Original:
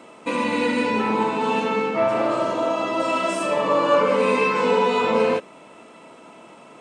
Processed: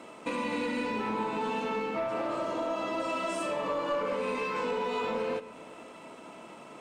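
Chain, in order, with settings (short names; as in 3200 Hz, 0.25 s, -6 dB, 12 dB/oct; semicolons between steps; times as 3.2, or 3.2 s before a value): compressor 3:1, threshold -28 dBFS, peak gain reduction 11.5 dB; sample leveller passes 1; on a send: reverb RT60 2.7 s, pre-delay 3 ms, DRR 15 dB; on the sum: gain -6 dB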